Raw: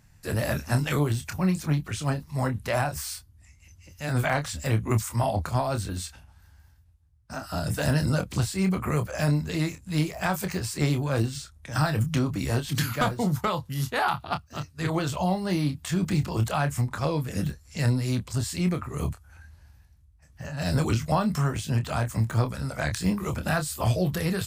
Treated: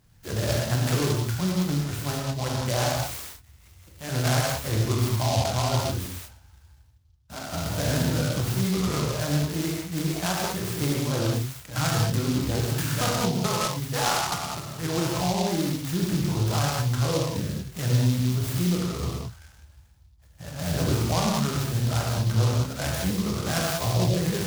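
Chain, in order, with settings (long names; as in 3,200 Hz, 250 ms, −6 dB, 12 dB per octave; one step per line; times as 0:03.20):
reverb whose tail is shaped and stops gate 230 ms flat, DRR −3.5 dB
short delay modulated by noise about 4,200 Hz, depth 0.099 ms
level −3.5 dB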